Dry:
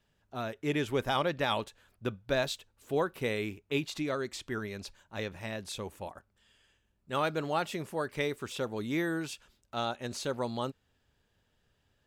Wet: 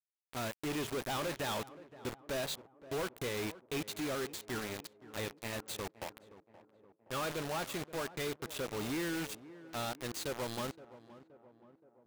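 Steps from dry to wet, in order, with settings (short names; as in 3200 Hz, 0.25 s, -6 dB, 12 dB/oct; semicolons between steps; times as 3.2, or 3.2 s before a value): high shelf 3800 Hz +2.5 dB; notch 5400 Hz, Q 6.3; flange 0.31 Hz, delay 6.2 ms, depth 8.7 ms, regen -89%; in parallel at -11 dB: soft clip -32.5 dBFS, distortion -12 dB; on the sum: companded quantiser 2-bit; tape echo 0.522 s, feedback 67%, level -12.5 dB, low-pass 1100 Hz; gain -9 dB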